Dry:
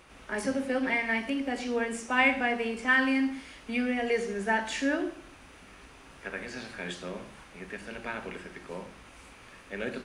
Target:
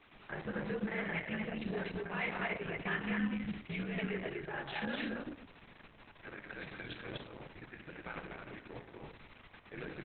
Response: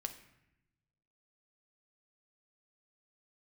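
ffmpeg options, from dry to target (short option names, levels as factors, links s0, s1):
-filter_complex "[0:a]asettb=1/sr,asplit=3[s0][s1][s2];[s0]atrim=end=4.034[s3];[s1]atrim=start=4.03:end=4.86,asetpts=PTS-STARTPTS,afade=t=in:d=0.004:c=qsin,afade=t=out:st=0.826:d=0.004:c=qsin,lowshelf=f=400:g=-7.5[s4];[s2]atrim=start=4.856[s5];[s3][s4]acrossfade=d=0.004:c1=hsin:c2=qsin[s6];[s6][s5]acrossfade=d=0.004:c1=qsin:c2=hsin,alimiter=limit=0.0708:level=0:latency=1:release=229,aecho=1:1:172|247.8:0.251|0.794,afreqshift=-59,volume=0.473" -ar 48000 -c:a libopus -b:a 6k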